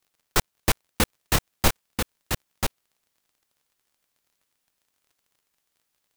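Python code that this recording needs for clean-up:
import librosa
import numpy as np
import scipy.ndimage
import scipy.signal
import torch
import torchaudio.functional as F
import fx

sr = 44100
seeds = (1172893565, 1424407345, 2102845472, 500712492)

y = fx.fix_declick_ar(x, sr, threshold=6.5)
y = fx.fix_echo_inverse(y, sr, delay_ms=988, level_db=-5.0)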